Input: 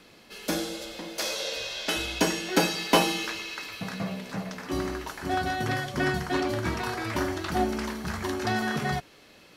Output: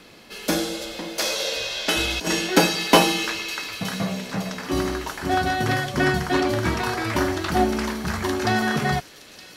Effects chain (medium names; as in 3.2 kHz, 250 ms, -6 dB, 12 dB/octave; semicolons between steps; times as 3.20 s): 1.97–2.47 s: compressor with a negative ratio -28 dBFS, ratio -0.5; feedback echo behind a high-pass 919 ms, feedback 60%, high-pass 3.3 kHz, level -13 dB; trim +6 dB